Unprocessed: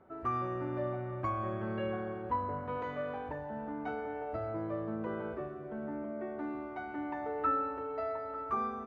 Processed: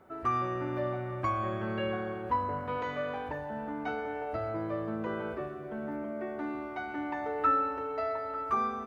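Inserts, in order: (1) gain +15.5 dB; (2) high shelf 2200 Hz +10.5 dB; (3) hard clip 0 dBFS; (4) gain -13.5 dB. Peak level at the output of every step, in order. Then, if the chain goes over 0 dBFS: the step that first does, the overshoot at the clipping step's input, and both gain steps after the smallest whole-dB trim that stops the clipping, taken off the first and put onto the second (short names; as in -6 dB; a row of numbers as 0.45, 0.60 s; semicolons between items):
-4.5, -2.5, -2.5, -16.0 dBFS; no overload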